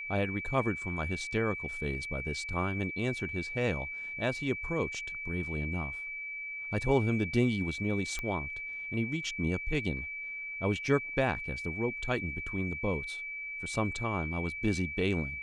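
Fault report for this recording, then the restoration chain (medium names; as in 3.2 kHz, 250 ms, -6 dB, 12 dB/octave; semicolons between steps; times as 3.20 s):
whine 2.3 kHz -37 dBFS
8.19 s: pop -21 dBFS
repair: de-click; band-stop 2.3 kHz, Q 30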